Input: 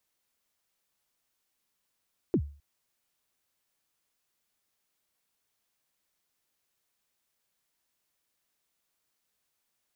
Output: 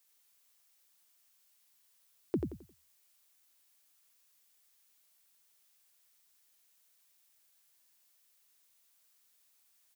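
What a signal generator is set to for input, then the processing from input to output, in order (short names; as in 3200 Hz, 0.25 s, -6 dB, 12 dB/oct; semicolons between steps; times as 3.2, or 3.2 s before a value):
kick drum length 0.26 s, from 420 Hz, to 72 Hz, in 70 ms, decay 0.39 s, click off, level -18.5 dB
tilt +2.5 dB/oct; on a send: feedback echo 88 ms, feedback 31%, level -5 dB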